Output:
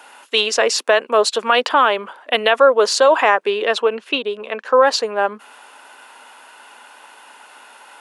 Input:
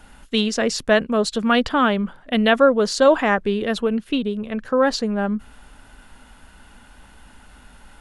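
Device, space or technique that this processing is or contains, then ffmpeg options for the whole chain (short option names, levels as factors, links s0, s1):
laptop speaker: -filter_complex "[0:a]asettb=1/sr,asplit=3[s0][s1][s2];[s0]atrim=end=3.504[s3];[s1]atrim=start=3.5:end=4.76,asetpts=PTS-STARTPTS,afade=t=in:d=0.004:c=qsin,afade=t=out:st=1.256:d=0.004:c=qsin,lowpass=7400[s4];[s2]atrim=start=4.756[s5];[s3][s4]acrossfade=d=0.004:c1=hsin:c2=qsin[s6];[s6][s5]acrossfade=d=0.004:c1=qsin:c2=hsin,highpass=f=400:w=0.5412,highpass=f=400:w=1.3066,equalizer=f=980:t=o:w=0.46:g=6,equalizer=f=2600:t=o:w=0.25:g=5,alimiter=limit=0.335:level=0:latency=1:release=132,volume=2.11"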